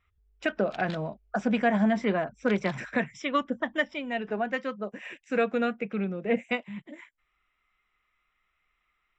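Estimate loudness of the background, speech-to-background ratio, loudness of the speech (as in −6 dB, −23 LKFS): −48.0 LKFS, 19.0 dB, −29.0 LKFS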